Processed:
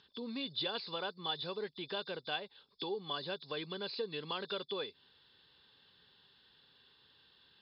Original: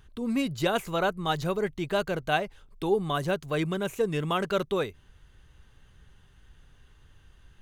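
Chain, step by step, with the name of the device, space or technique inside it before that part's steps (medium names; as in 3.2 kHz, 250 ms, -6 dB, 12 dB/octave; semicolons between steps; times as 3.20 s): hearing aid with frequency lowering (knee-point frequency compression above 3.4 kHz 4:1; compression 2.5:1, threshold -34 dBFS, peak gain reduction 10 dB; cabinet simulation 320–6600 Hz, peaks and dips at 330 Hz -5 dB, 660 Hz -10 dB, 1.3 kHz -6 dB, 2.1 kHz -6 dB, 3.6 kHz +8 dB, 6 kHz +10 dB); trim -1.5 dB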